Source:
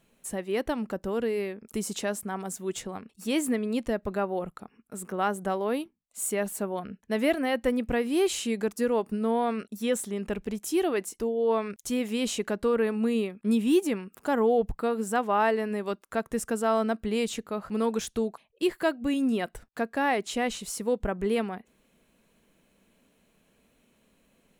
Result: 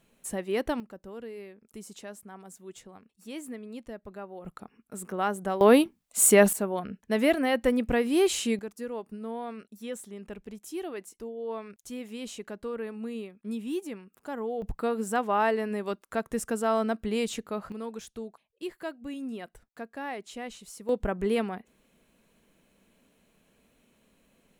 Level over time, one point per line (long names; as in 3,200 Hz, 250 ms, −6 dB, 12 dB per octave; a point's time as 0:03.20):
0 dB
from 0:00.80 −12.5 dB
from 0:04.45 −1 dB
from 0:05.61 +11 dB
from 0:06.53 +1.5 dB
from 0:08.59 −10 dB
from 0:14.62 −1 dB
from 0:17.72 −10.5 dB
from 0:20.89 0 dB